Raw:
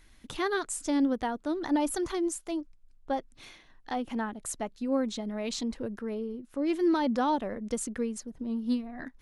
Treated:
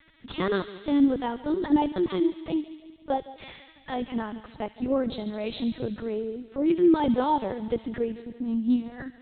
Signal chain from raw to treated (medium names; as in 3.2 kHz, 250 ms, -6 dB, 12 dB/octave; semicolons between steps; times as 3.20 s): peaking EQ 720 Hz -4.5 dB 0.3 oct; bucket-brigade echo 164 ms, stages 1024, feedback 45%, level -17.5 dB; dynamic bell 1.6 kHz, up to -5 dB, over -48 dBFS, Q 1.1; LPC vocoder at 8 kHz pitch kept; high-pass 71 Hz 6 dB/octave; feedback echo behind a high-pass 71 ms, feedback 77%, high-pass 2.2 kHz, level -10 dB; trim +6.5 dB